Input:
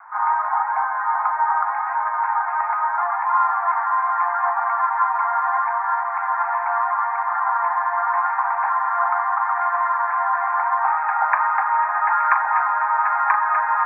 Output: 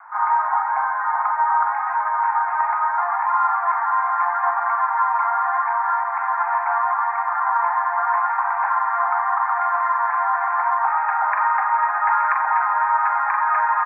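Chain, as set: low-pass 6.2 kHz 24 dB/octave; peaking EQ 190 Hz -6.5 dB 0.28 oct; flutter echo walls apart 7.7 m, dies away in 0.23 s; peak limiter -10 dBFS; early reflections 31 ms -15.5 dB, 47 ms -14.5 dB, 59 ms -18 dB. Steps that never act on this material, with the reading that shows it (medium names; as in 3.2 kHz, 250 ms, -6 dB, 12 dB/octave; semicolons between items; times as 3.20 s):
low-pass 6.2 kHz: input has nothing above 2.2 kHz; peaking EQ 190 Hz: input has nothing below 680 Hz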